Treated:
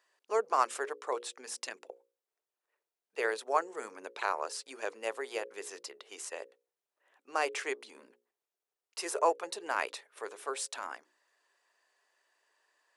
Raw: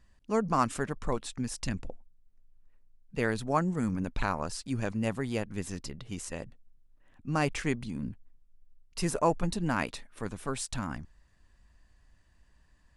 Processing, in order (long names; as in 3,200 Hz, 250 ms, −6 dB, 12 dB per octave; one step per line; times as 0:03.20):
elliptic high-pass filter 400 Hz, stop band 80 dB
mains-hum notches 60/120/180/240/300/360/420/480/540 Hz